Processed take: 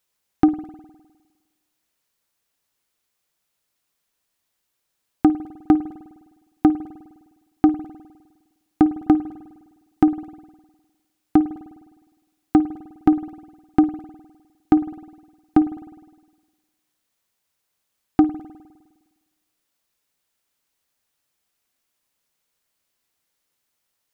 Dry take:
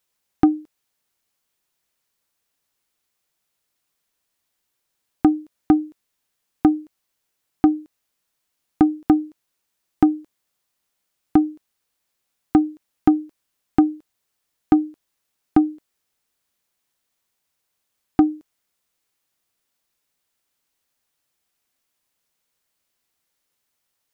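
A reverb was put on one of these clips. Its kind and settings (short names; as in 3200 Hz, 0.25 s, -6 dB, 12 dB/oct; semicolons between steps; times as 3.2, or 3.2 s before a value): spring tank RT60 1.3 s, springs 51 ms, chirp 50 ms, DRR 13.5 dB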